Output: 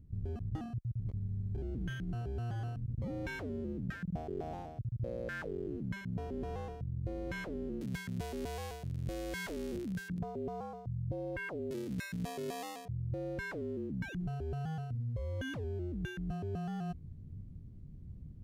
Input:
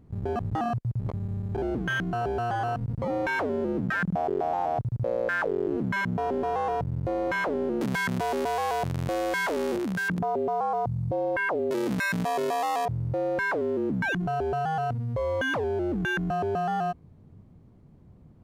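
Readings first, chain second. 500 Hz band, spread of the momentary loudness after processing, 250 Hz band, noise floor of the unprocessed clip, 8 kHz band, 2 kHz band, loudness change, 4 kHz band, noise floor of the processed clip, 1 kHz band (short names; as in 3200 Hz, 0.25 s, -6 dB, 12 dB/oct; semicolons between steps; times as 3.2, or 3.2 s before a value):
-14.0 dB, 3 LU, -9.5 dB, -53 dBFS, -9.0 dB, -16.0 dB, -11.5 dB, -11.0 dB, -49 dBFS, -20.0 dB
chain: passive tone stack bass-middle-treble 10-0-1; reverse; compressor, threshold -51 dBFS, peak gain reduction 13 dB; reverse; gain +15.5 dB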